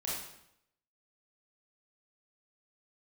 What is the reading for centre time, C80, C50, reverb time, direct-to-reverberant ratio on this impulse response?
64 ms, 4.0 dB, −0.5 dB, 0.75 s, −6.5 dB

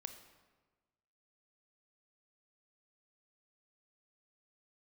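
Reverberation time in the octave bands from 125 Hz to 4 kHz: 1.5, 1.4, 1.4, 1.3, 1.1, 0.90 seconds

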